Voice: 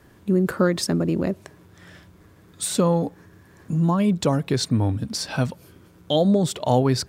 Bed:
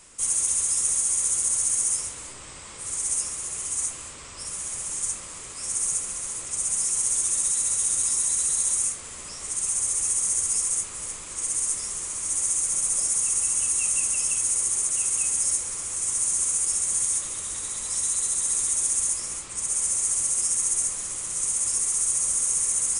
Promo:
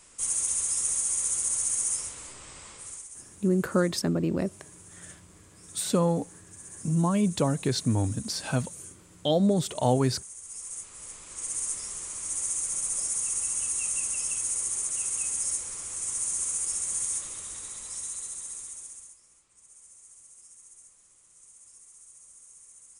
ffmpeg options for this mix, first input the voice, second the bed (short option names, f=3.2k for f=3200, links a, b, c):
-filter_complex "[0:a]adelay=3150,volume=-4.5dB[a];[1:a]volume=10dB,afade=t=out:st=2.66:d=0.42:silence=0.16788,afade=t=in:st=10.41:d=1.17:silence=0.199526,afade=t=out:st=17.15:d=2.02:silence=0.0749894[b];[a][b]amix=inputs=2:normalize=0"